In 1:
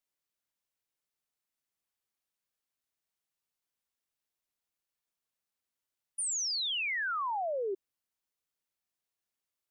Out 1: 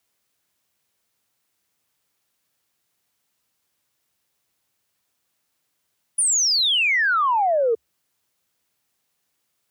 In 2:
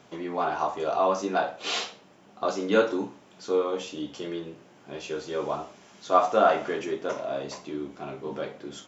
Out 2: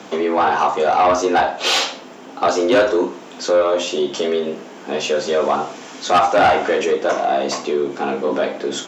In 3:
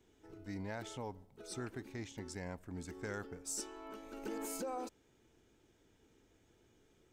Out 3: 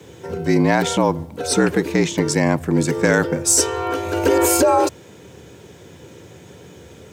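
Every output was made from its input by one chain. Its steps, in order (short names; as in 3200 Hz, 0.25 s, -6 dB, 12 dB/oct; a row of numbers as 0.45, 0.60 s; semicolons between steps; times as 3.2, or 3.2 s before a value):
low shelf 150 Hz +3 dB; in parallel at +2 dB: compressor, threshold -34 dBFS; on the sum: soft clip -18.5 dBFS; frequency shift +67 Hz; match loudness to -18 LUFS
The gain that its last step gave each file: +8.5, +10.0, +19.0 dB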